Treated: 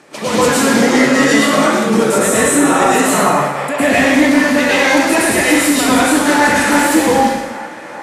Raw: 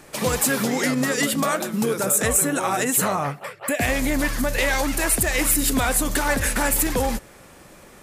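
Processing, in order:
high-pass filter 200 Hz 12 dB per octave
on a send: delay with a band-pass on its return 396 ms, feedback 75%, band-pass 1,100 Hz, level −17 dB
on the sum: dense smooth reverb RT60 1.1 s, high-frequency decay 0.95×, pre-delay 95 ms, DRR −9 dB
in parallel at −11 dB: sine wavefolder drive 6 dB, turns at 1.5 dBFS
on the sum: high-frequency loss of the air 60 metres
level −2.5 dB

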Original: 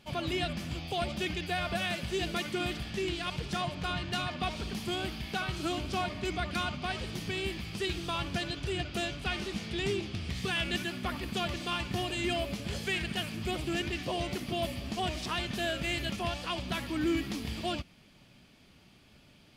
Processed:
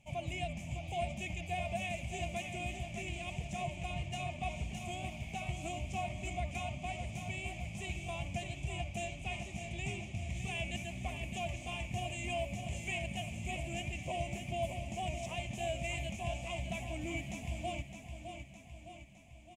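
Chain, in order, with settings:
drawn EQ curve 130 Hz 0 dB, 430 Hz −16 dB, 660 Hz +1 dB, 1,000 Hz −11 dB, 1,500 Hz −28 dB, 2,300 Hz +1 dB, 4,500 Hz −22 dB, 6,900 Hz +3 dB, 12,000 Hz −12 dB
repeating echo 611 ms, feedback 55%, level −8 dB
level −2 dB

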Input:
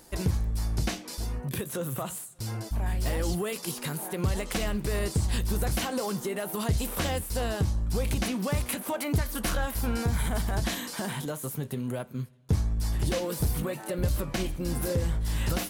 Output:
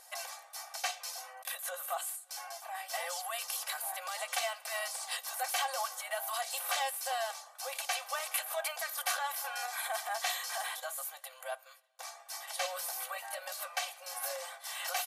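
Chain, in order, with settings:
linear-phase brick-wall band-pass 500–14,000 Hz
comb filter 2.7 ms, depth 80%
wrong playback speed 24 fps film run at 25 fps
level −2.5 dB

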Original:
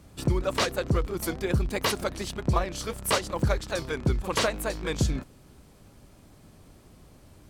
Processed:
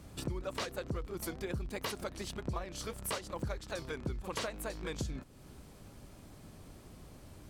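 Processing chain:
downward compressor 2.5 to 1, threshold −41 dBFS, peak gain reduction 14.5 dB

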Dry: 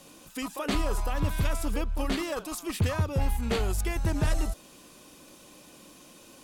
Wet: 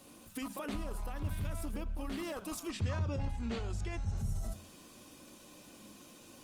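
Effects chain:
0:04.07–0:04.45: healed spectral selection 240–5,400 Hz both
brickwall limiter −27.5 dBFS, peak gain reduction 9.5 dB
0:02.70–0:04.19: low-pass filter 7,500 Hz 24 dB per octave
on a send at −16 dB: convolution reverb RT60 0.60 s, pre-delay 3 ms
on the sum: level −4 dB
Opus 32 kbit/s 48,000 Hz

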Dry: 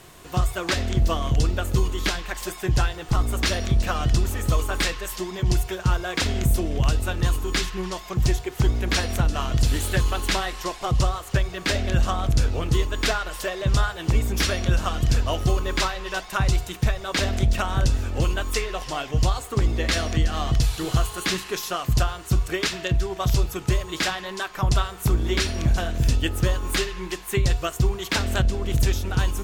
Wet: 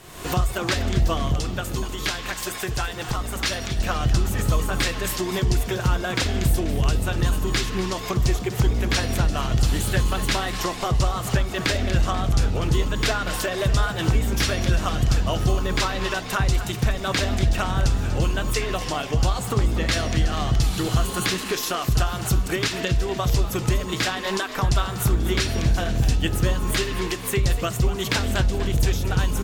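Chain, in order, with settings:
camcorder AGC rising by 50 dB per second
0:01.36–0:03.79: low-shelf EQ 440 Hz −8 dB
echo with shifted repeats 244 ms, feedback 52%, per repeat +68 Hz, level −13 dB

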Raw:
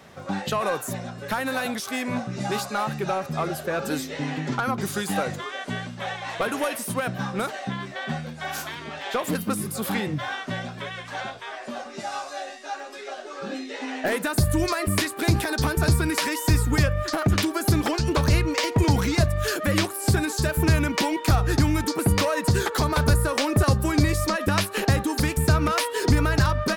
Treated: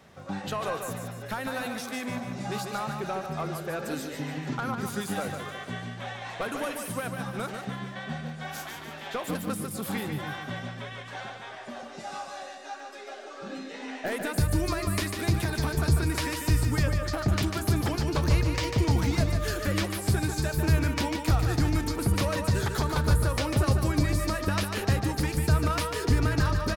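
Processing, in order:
low-shelf EQ 120 Hz +5.5 dB
repeating echo 147 ms, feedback 45%, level −6 dB
level −7 dB

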